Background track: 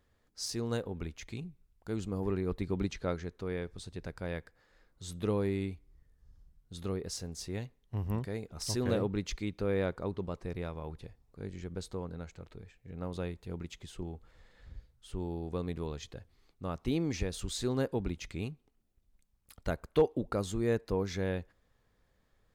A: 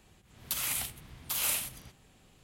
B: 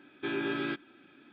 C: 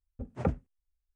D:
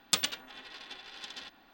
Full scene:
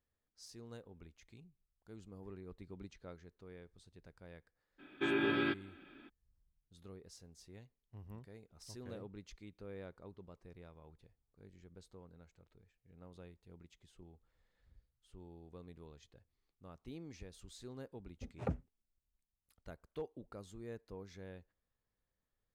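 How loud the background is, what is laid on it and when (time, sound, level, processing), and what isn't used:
background track -17.5 dB
4.78 add B -0.5 dB, fades 0.02 s
18.02 add C -8.5 dB
not used: A, D

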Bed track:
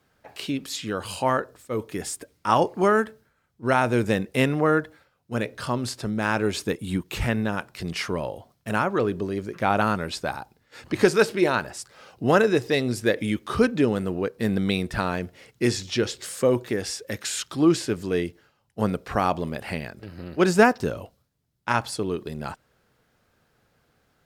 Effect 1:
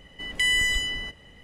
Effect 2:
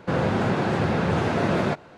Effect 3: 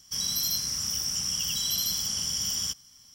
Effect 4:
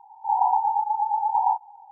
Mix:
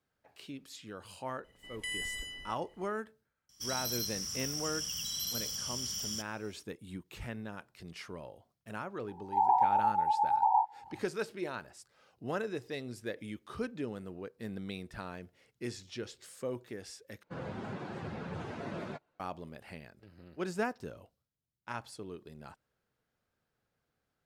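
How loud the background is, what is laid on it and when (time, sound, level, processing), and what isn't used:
bed track -17 dB
1.44 add 1 -16 dB + bell 11000 Hz +11 dB 0.45 oct
3.49 add 3 -8.5 dB + notch 910 Hz
9.08 add 4 -5 dB
17.23 replace with 2 -15.5 dB + per-bin expansion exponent 1.5

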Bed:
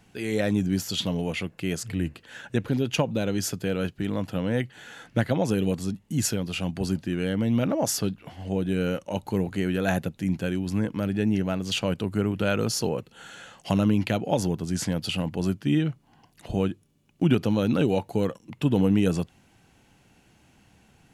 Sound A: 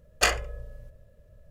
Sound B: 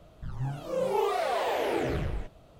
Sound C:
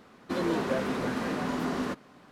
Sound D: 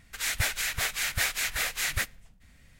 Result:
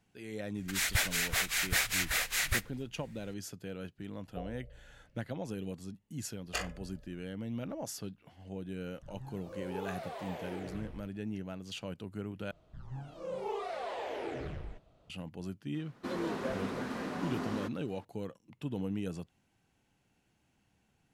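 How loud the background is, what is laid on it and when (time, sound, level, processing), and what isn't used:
bed -15 dB
0.55 add D -2 dB
4.14 add A -12.5 dB + rippled Chebyshev low-pass 730 Hz, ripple 3 dB
6.32 add A -14 dB
8.8 add B -14.5 dB
12.51 replace with B -10 dB + Bessel low-pass 6800 Hz
15.74 add C -7 dB

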